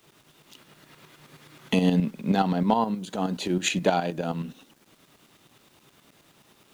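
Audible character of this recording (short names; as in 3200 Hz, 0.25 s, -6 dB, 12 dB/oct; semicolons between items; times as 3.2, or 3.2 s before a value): tremolo saw up 9.5 Hz, depth 65%; a quantiser's noise floor 10-bit, dither none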